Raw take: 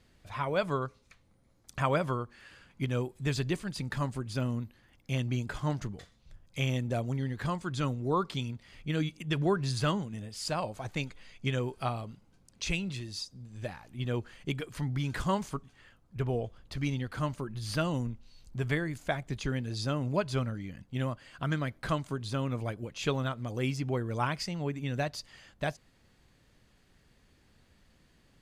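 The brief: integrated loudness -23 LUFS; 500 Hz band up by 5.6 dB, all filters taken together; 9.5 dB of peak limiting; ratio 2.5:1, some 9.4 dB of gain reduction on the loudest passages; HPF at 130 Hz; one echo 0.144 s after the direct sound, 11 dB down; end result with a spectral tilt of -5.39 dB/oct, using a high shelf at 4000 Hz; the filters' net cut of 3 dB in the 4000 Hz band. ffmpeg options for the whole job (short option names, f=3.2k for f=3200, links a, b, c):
-af "highpass=130,equalizer=f=500:t=o:g=7,highshelf=f=4k:g=4,equalizer=f=4k:t=o:g=-6.5,acompressor=threshold=-34dB:ratio=2.5,alimiter=level_in=4dB:limit=-24dB:level=0:latency=1,volume=-4dB,aecho=1:1:144:0.282,volume=16.5dB"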